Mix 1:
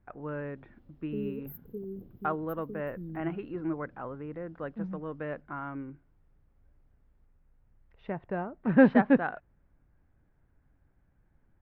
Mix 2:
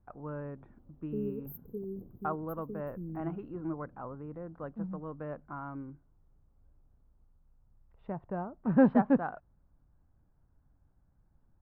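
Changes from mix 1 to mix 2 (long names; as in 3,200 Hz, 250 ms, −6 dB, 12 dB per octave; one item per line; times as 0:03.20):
speech: add parametric band 410 Hz −5 dB 1.5 octaves
master: add flat-topped bell 3,900 Hz −14 dB 2.8 octaves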